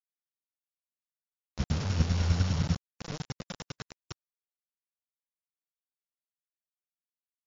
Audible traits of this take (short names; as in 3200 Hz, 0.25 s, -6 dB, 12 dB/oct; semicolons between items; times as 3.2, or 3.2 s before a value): a buzz of ramps at a fixed pitch in blocks of 8 samples; chopped level 10 Hz, depth 60%, duty 20%; a quantiser's noise floor 6-bit, dither none; MP3